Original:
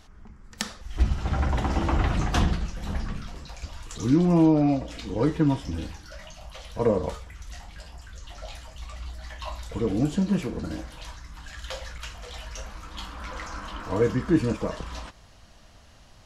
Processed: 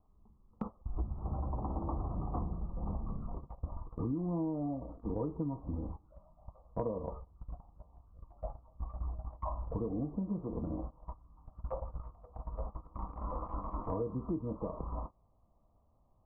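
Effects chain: steep low-pass 1.2 kHz 96 dB/octave; gate -37 dBFS, range -20 dB; compression 8:1, threshold -37 dBFS, peak gain reduction 21.5 dB; trim +3.5 dB

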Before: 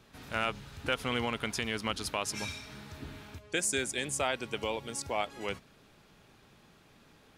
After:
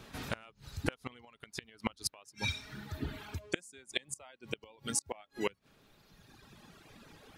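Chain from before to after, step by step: reverb removal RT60 1.9 s; inverted gate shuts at -24 dBFS, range -30 dB; trim +7.5 dB

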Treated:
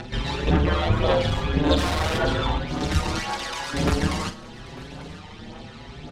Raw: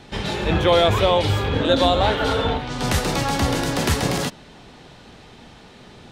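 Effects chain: 0.60–1.06 s: treble shelf 3 kHz -10.5 dB; 3.18–3.73 s: high-pass 800 Hz 12 dB/octave; in parallel at -3 dB: upward compressor, threshold -25 dBFS; on the sum: AM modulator 72 Hz, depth 90%; one-sided clip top -23.5 dBFS; phaser 1.8 Hz, delay 1.1 ms, feedback 50%; 1.77–2.18 s: Schmitt trigger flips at -35 dBFS; distance through air 52 m; doubling 44 ms -11 dB; delay 897 ms -19.5 dB; on a send at -18 dB: reverberation RT60 0.60 s, pre-delay 75 ms; on the sum: endless flanger 5.7 ms +0.88 Hz

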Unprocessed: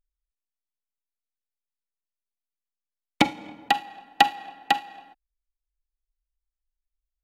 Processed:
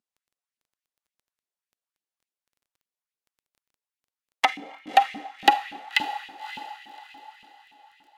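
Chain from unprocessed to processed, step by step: gliding tape speed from 53% -> 124%; echo that smears into a reverb 584 ms, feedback 40%, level -13 dB; LFO high-pass saw up 3.5 Hz 210–2800 Hz; crackle 11 per s -50 dBFS; trim -1 dB

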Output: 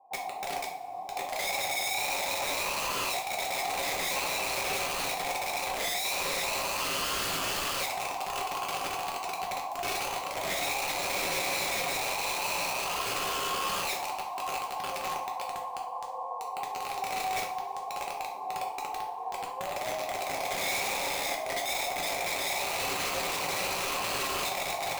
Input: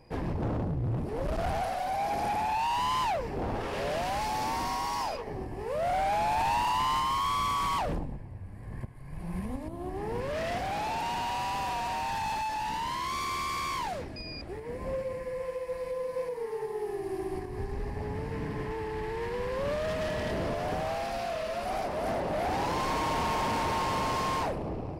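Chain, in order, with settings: rattle on loud lows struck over -37 dBFS, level -38 dBFS; cascade formant filter a; peaking EQ 780 Hz +14.5 dB 0.55 oct; compression 3:1, threshold -32 dBFS, peak gain reduction 12 dB; high-pass 200 Hz 24 dB/octave; on a send: echo that smears into a reverb 1373 ms, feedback 72%, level -6.5 dB; on the sum: integer overflow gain 30 dB; two-slope reverb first 0.43 s, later 1.9 s, from -19 dB, DRR -0.5 dB

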